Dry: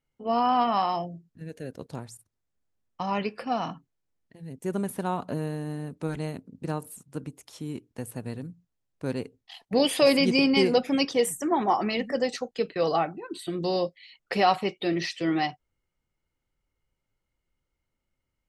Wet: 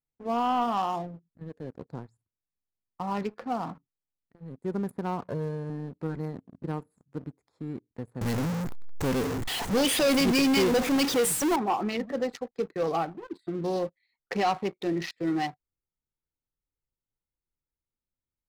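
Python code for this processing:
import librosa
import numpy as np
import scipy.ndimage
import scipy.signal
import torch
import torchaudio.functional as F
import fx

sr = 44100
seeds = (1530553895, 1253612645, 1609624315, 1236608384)

y = fx.comb(x, sr, ms=1.9, depth=0.65, at=(5.21, 5.7))
y = fx.zero_step(y, sr, step_db=-23.0, at=(8.21, 11.56))
y = fx.wiener(y, sr, points=15)
y = fx.peak_eq(y, sr, hz=620.0, db=-6.0, octaves=0.22)
y = fx.leveller(y, sr, passes=2)
y = F.gain(torch.from_numpy(y), -8.5).numpy()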